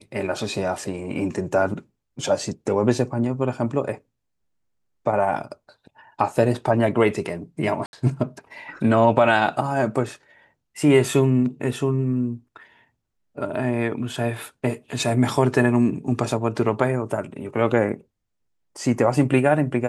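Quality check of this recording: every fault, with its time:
7.86–7.93 gap 71 ms

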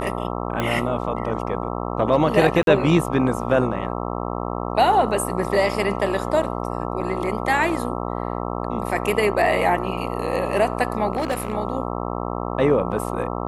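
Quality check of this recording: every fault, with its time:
buzz 60 Hz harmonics 22 -27 dBFS
0.6 pop -10 dBFS
2.63–2.67 gap 42 ms
5.73 gap 2 ms
7.01 gap 4.3 ms
11.13–11.53 clipped -18.5 dBFS

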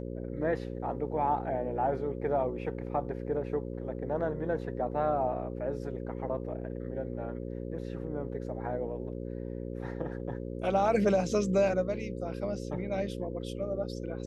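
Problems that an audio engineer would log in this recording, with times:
buzz 60 Hz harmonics 9 -38 dBFS

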